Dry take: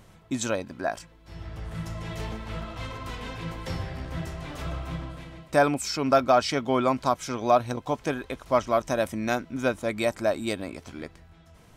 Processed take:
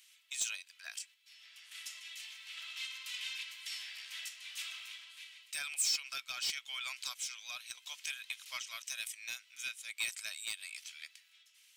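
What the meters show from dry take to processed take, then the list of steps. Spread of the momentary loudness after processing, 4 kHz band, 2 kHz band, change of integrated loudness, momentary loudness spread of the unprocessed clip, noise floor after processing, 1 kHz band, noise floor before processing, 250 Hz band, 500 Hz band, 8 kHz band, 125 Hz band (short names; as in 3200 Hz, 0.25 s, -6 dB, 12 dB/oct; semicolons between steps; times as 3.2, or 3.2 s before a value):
12 LU, -0.5 dB, -7.5 dB, -12.0 dB, 15 LU, -66 dBFS, -28.0 dB, -54 dBFS, under -40 dB, under -40 dB, +1.0 dB, under -40 dB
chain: Chebyshev high-pass 2600 Hz, order 3; dynamic EQ 8200 Hz, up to +5 dB, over -57 dBFS, Q 2.6; in parallel at -2 dB: compressor, threshold -45 dBFS, peak gain reduction 18 dB; on the sum: soft clip -27 dBFS, distortion -12 dB; random-step tremolo; gain +1.5 dB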